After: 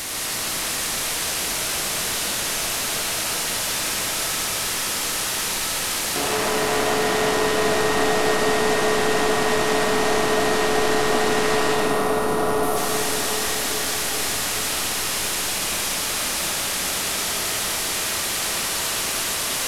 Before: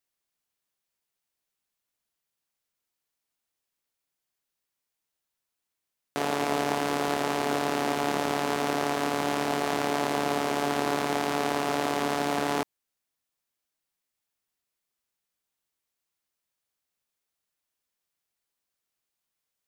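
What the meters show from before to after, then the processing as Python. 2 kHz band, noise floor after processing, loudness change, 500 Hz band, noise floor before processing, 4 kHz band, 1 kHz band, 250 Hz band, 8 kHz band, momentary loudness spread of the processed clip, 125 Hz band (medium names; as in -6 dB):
+11.5 dB, -25 dBFS, +6.5 dB, +9.5 dB, -85 dBFS, +15.5 dB, +6.0 dB, +4.5 dB, +20.5 dB, 3 LU, +7.5 dB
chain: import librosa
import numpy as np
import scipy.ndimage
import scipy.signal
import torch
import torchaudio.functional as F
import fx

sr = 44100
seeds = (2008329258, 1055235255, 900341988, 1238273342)

y = fx.delta_mod(x, sr, bps=64000, step_db=-22.0)
y = fx.echo_diffused(y, sr, ms=482, feedback_pct=68, wet_db=-7.5)
y = fx.spec_box(y, sr, start_s=11.74, length_s=1.03, low_hz=1500.0, high_hz=8700.0, gain_db=-9)
y = fx.rev_freeverb(y, sr, rt60_s=2.3, hf_ratio=0.8, predelay_ms=60, drr_db=-3.0)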